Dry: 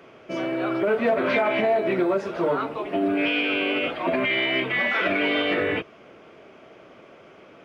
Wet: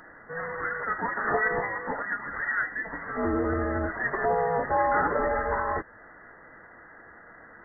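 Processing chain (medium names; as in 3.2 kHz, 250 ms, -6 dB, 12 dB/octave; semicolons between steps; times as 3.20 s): Chebyshev high-pass 790 Hz, order 10; in parallel at 0 dB: compression, threshold -38 dBFS, peak gain reduction 15.5 dB; on the sum: frequency inversion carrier 2.8 kHz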